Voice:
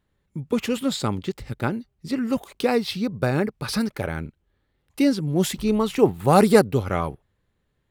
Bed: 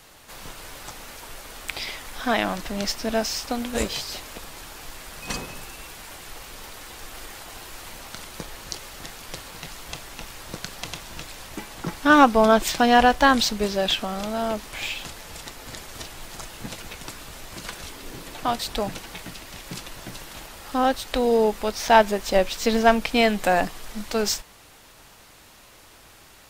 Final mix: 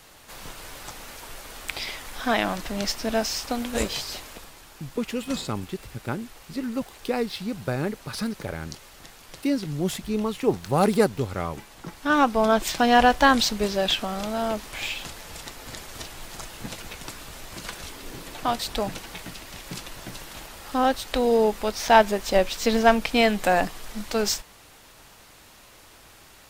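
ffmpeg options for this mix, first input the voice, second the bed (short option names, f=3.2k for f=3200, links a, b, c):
-filter_complex "[0:a]adelay=4450,volume=-5dB[a];[1:a]volume=7dB,afade=t=out:st=4.09:d=0.5:silence=0.421697,afade=t=in:st=11.92:d=1.18:silence=0.421697[b];[a][b]amix=inputs=2:normalize=0"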